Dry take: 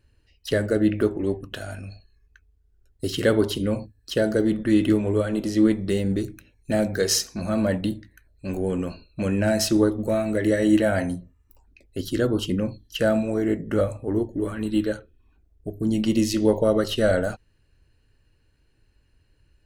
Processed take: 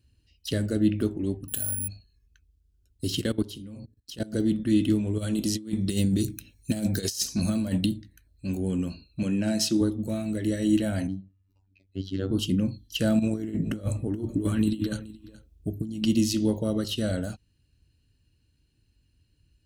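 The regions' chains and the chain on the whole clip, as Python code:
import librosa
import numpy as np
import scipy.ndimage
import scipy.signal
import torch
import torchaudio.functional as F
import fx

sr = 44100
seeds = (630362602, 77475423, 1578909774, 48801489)

y = fx.chain(x, sr, fx.high_shelf(hz=3700.0, db=-8.0),
    fx.resample_bad(factor=4, down='none', up='zero_stuff'), at=(1.48, 1.88))
y = fx.chain(y, sr, fx.hum_notches(base_hz=60, count=10),
    fx.level_steps(step_db=20), at=(3.21, 4.33))
y = fx.chain(y, sr, fx.high_shelf(hz=4700.0, db=9.0),
    fx.over_compress(threshold_db=-24.0, ratio=-0.5), at=(5.18, 7.86))
y = fx.chain(y, sr, fx.highpass(hz=160.0, slope=12),
    fx.high_shelf(hz=12000.0, db=-11.0), at=(9.23, 9.81))
y = fx.chain(y, sr, fx.robotise(hz=95.8),
    fx.air_absorb(metres=200.0), at=(11.07, 12.31))
y = fx.chain(y, sr, fx.over_compress(threshold_db=-27.0, ratio=-0.5),
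    fx.echo_single(ms=425, db=-18.0), at=(13.19, 16.06))
y = scipy.signal.sosfilt(scipy.signal.butter(2, 48.0, 'highpass', fs=sr, output='sos'), y)
y = fx.band_shelf(y, sr, hz=920.0, db=-11.0, octaves=2.8)
y = fx.rider(y, sr, range_db=10, speed_s=2.0)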